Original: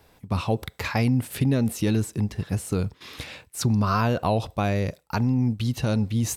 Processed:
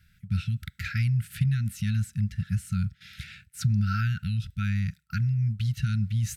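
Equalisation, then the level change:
linear-phase brick-wall band-stop 210–1,300 Hz
high-shelf EQ 2,300 Hz −9 dB
0.0 dB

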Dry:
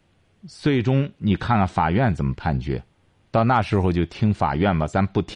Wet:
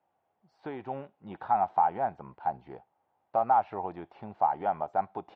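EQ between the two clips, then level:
resonant band-pass 800 Hz, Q 4.3
high-frequency loss of the air 90 metres
0.0 dB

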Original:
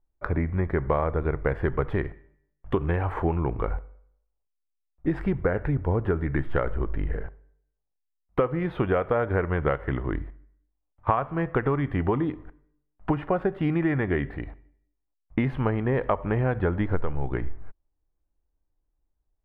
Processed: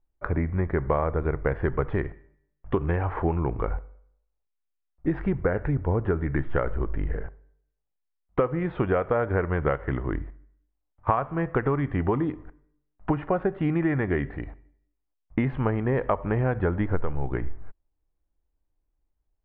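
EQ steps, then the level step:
low-pass filter 2,800 Hz 12 dB per octave
0.0 dB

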